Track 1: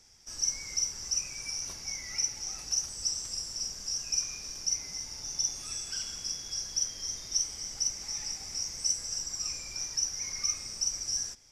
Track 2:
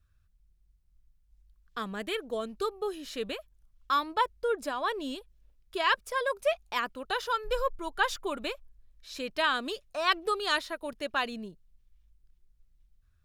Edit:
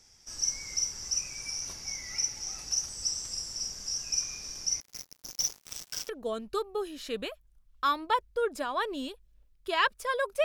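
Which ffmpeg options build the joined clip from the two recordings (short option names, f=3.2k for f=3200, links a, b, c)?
-filter_complex "[0:a]asettb=1/sr,asplit=3[a][b][c];[a]atrim=end=4.804[d];[b]atrim=start=4.8:end=6.09,asetpts=PTS-STARTPTS,afade=t=in:d=0.004:c=qsin,afade=t=out:st=1.286:d=0.004:c=qsin,acrusher=bits=4:mix=0:aa=0.5[e];[c]atrim=start=6.086[f];[d][e]acrossfade=d=0.004:c1=hsin:c2=qsin[g];[g][f]acrossfade=d=0.004:c1=qsin:c2=hsin,apad=whole_dur=10.44,atrim=end=10.44,atrim=end=6.092[h];[1:a]atrim=start=2.158:end=6.51[i];[h][i]acrossfade=d=0.004:c1=hsin:c2=hsin"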